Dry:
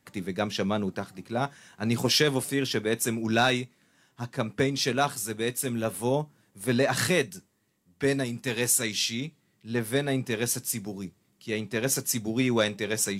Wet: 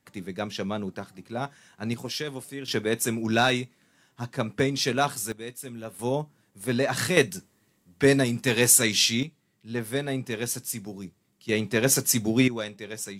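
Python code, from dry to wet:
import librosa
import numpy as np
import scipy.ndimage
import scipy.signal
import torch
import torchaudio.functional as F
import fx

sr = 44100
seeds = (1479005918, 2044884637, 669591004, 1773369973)

y = fx.gain(x, sr, db=fx.steps((0.0, -3.0), (1.94, -9.5), (2.68, 1.0), (5.32, -9.0), (5.99, -1.0), (7.17, 6.0), (9.23, -2.0), (11.49, 5.0), (12.48, -8.0)))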